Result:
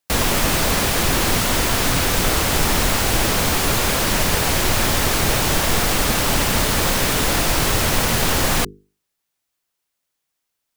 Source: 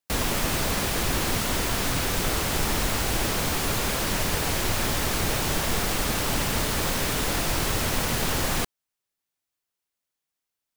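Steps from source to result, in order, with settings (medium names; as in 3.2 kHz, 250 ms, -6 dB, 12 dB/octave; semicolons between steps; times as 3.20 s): hum notches 50/100/150/200/250/300/350/400/450 Hz; trim +7.5 dB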